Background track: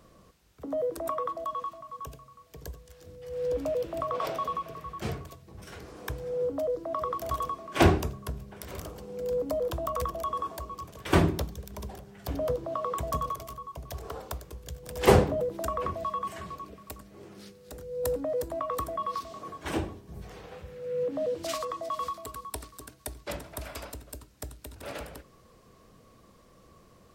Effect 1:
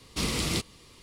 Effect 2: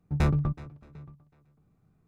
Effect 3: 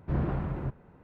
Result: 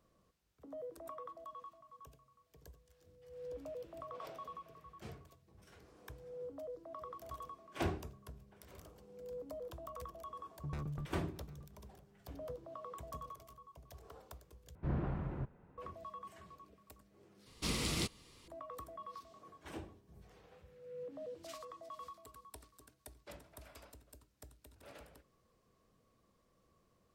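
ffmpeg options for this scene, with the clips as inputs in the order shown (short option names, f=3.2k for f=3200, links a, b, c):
-filter_complex "[0:a]volume=-16.5dB[a];[2:a]acompressor=threshold=-31dB:ratio=6:attack=3.2:release=140:knee=1:detection=peak[b];[a]asplit=3[c][d][e];[c]atrim=end=14.754[f];[3:a]atrim=end=1.03,asetpts=PTS-STARTPTS,volume=-7.5dB[g];[d]atrim=start=15.776:end=17.464[h];[1:a]atrim=end=1.02,asetpts=PTS-STARTPTS,volume=-7.5dB[i];[e]atrim=start=18.476[j];[b]atrim=end=2.07,asetpts=PTS-STARTPTS,volume=-7.5dB,afade=t=in:d=0.004:c=hsin,afade=t=out:st=2.066:d=0.004:c=hsin,adelay=10530[k];[f][g]acrossfade=d=0.004:c1=hsin:c2=hsin[l];[l][h]acrossfade=d=0.004:c1=hsin:c2=hsin[m];[m][i]acrossfade=d=0.004:c1=hsin:c2=hsin[n];[n][j]acrossfade=d=0.004:c1=hsin:c2=hsin[o];[o][k]amix=inputs=2:normalize=0"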